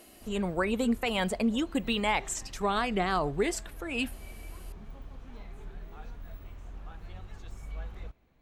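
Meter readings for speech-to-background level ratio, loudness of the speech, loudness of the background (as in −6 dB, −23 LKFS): 17.5 dB, −30.0 LKFS, −47.5 LKFS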